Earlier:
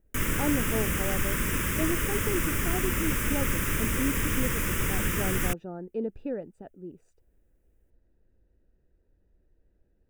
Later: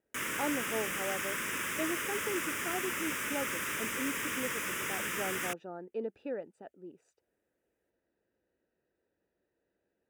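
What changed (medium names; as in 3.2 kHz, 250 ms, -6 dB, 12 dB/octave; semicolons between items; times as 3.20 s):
background -3.5 dB; master: add frequency weighting A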